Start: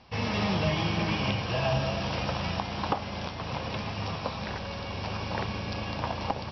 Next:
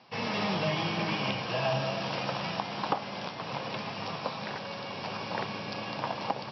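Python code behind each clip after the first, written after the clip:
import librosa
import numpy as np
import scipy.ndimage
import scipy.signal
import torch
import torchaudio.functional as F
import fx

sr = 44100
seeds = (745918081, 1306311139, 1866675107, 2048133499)

y = scipy.signal.sosfilt(scipy.signal.ellip(3, 1.0, 40, [130.0, 5300.0], 'bandpass', fs=sr, output='sos'), x)
y = fx.low_shelf(y, sr, hz=190.0, db=-6.0)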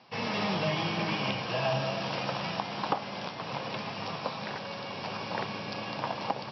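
y = x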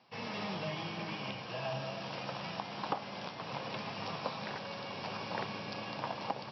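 y = fx.rider(x, sr, range_db=10, speed_s=2.0)
y = F.gain(torch.from_numpy(y), -7.0).numpy()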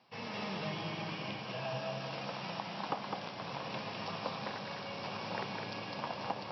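y = x + 10.0 ** (-4.5 / 20.0) * np.pad(x, (int(206 * sr / 1000.0), 0))[:len(x)]
y = F.gain(torch.from_numpy(y), -1.5).numpy()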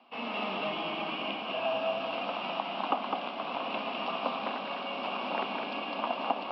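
y = fx.cabinet(x, sr, low_hz=240.0, low_slope=24, high_hz=3500.0, hz=(250.0, 470.0, 690.0, 1200.0, 1800.0, 2800.0), db=(10, -3, 7, 6, -8, 8))
y = F.gain(torch.from_numpy(y), 4.0).numpy()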